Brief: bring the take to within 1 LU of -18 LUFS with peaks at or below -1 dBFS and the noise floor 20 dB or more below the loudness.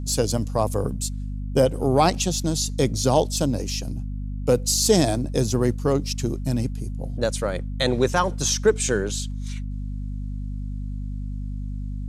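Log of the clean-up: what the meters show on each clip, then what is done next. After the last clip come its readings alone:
hum 50 Hz; harmonics up to 250 Hz; hum level -27 dBFS; loudness -24.0 LUFS; peak -5.0 dBFS; loudness target -18.0 LUFS
-> notches 50/100/150/200/250 Hz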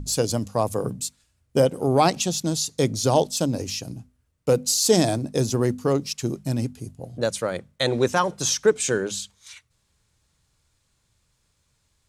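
hum none; loudness -23.5 LUFS; peak -4.5 dBFS; loudness target -18.0 LUFS
-> gain +5.5 dB; limiter -1 dBFS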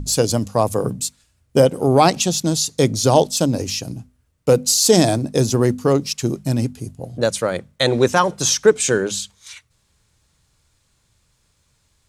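loudness -18.0 LUFS; peak -1.0 dBFS; noise floor -65 dBFS

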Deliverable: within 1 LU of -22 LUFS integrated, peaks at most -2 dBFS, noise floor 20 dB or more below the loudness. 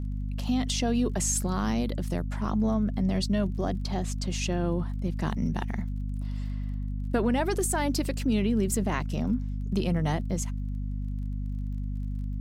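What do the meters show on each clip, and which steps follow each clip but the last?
ticks 28/s; hum 50 Hz; harmonics up to 250 Hz; hum level -29 dBFS; loudness -29.5 LUFS; peak -13.5 dBFS; loudness target -22.0 LUFS
-> de-click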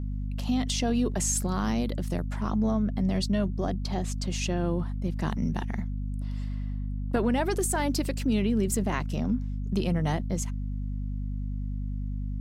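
ticks 0/s; hum 50 Hz; harmonics up to 250 Hz; hum level -29 dBFS
-> de-hum 50 Hz, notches 5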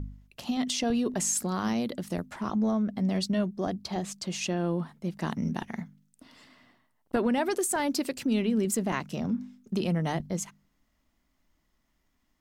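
hum none; loudness -30.0 LUFS; peak -14.5 dBFS; loudness target -22.0 LUFS
-> gain +8 dB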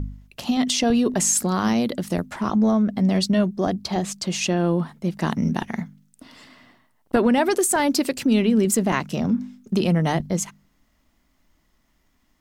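loudness -22.0 LUFS; peak -6.5 dBFS; noise floor -65 dBFS

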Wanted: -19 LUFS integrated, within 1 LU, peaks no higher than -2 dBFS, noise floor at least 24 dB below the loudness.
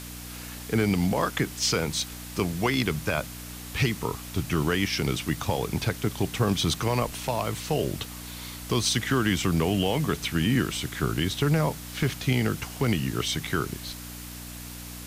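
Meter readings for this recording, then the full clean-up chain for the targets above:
hum 60 Hz; harmonics up to 300 Hz; hum level -40 dBFS; noise floor -40 dBFS; noise floor target -51 dBFS; loudness -27.0 LUFS; peak -13.0 dBFS; loudness target -19.0 LUFS
-> de-hum 60 Hz, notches 5; denoiser 11 dB, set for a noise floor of -40 dBFS; gain +8 dB

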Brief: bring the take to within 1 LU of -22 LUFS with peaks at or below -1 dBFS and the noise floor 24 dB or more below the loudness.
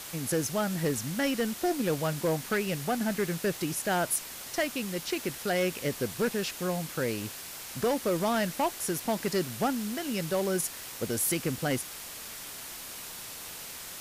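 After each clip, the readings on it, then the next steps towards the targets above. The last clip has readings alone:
noise floor -42 dBFS; noise floor target -55 dBFS; loudness -31.0 LUFS; peak -18.0 dBFS; loudness target -22.0 LUFS
-> denoiser 13 dB, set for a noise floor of -42 dBFS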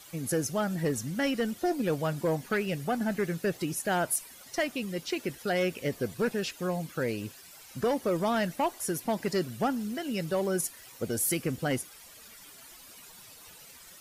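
noise floor -51 dBFS; noise floor target -55 dBFS
-> denoiser 6 dB, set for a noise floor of -51 dBFS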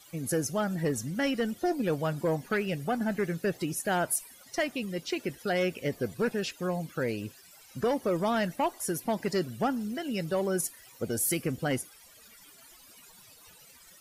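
noise floor -55 dBFS; loudness -31.0 LUFS; peak -18.5 dBFS; loudness target -22.0 LUFS
-> gain +9 dB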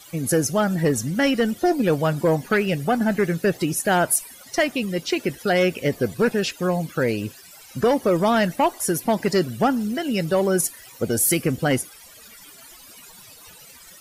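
loudness -22.0 LUFS; peak -9.5 dBFS; noise floor -46 dBFS

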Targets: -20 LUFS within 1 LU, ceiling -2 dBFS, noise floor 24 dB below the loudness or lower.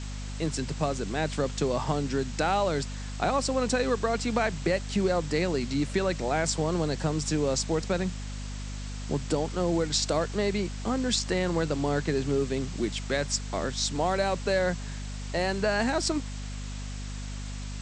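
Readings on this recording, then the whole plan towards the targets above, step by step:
hum 50 Hz; harmonics up to 250 Hz; hum level -34 dBFS; noise floor -36 dBFS; noise floor target -53 dBFS; loudness -29.0 LUFS; peak -12.0 dBFS; loudness target -20.0 LUFS
-> de-hum 50 Hz, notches 5; denoiser 17 dB, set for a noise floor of -36 dBFS; gain +9 dB

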